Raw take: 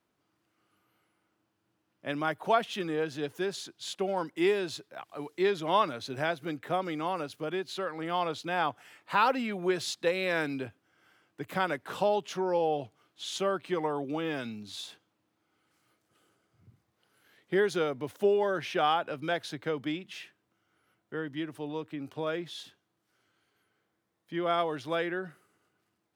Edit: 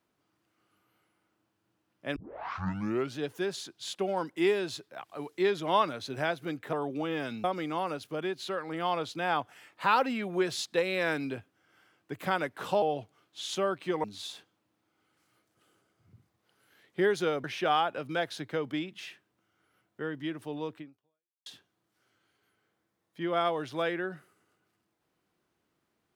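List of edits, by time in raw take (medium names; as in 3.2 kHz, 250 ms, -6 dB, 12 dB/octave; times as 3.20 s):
2.16 s: tape start 1.03 s
12.11–12.65 s: delete
13.87–14.58 s: move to 6.73 s
17.98–18.57 s: delete
21.91–22.59 s: fade out exponential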